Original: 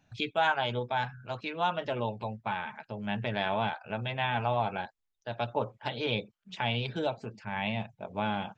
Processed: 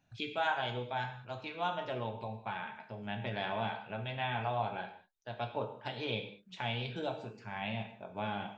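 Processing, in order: non-linear reverb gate 0.23 s falling, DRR 4.5 dB; gain -6.5 dB

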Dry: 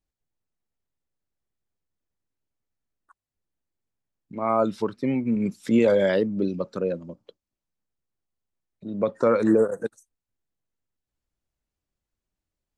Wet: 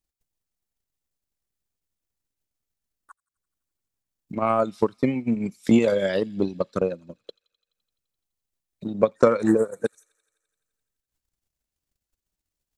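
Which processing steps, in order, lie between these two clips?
transient shaper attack +10 dB, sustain -7 dB; high shelf 3400 Hz +10 dB; on a send: thin delay 85 ms, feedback 75%, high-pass 3300 Hz, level -21.5 dB; on the sum: gain -3 dB

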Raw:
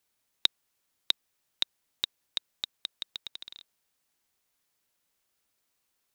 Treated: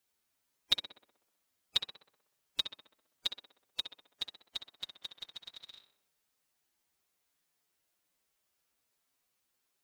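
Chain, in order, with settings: time stretch by phase-locked vocoder 1.6×; tape echo 64 ms, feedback 66%, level -6 dB, low-pass 2500 Hz; gain -2.5 dB

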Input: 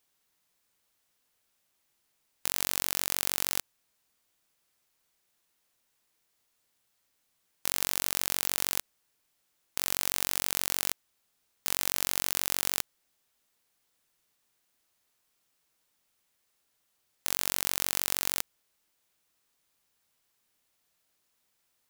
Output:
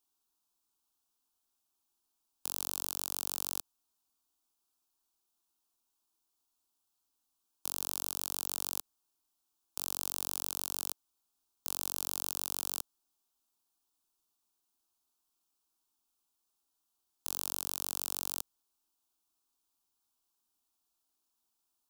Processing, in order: fixed phaser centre 530 Hz, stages 6; gain -5.5 dB

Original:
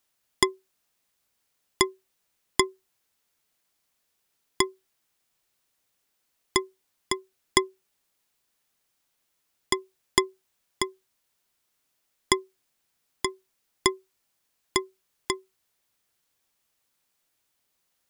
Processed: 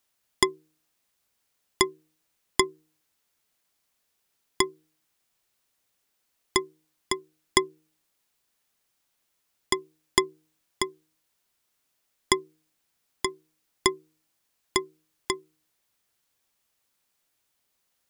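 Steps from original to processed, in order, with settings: de-hum 156 Hz, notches 3

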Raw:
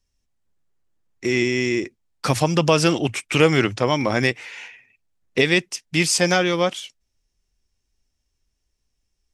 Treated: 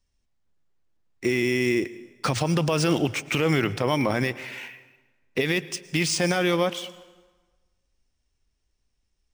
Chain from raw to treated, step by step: limiter -12 dBFS, peak gain reduction 10 dB; reverb RT60 1.3 s, pre-delay 98 ms, DRR 17.5 dB; decimation joined by straight lines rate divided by 3×

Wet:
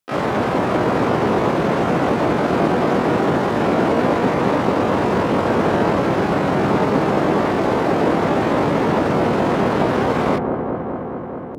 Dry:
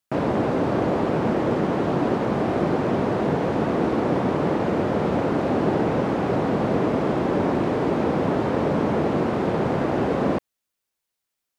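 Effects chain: on a send: dark delay 0.212 s, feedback 80%, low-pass 500 Hz, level -4 dB; on the sum: harmoniser +12 st -1 dB

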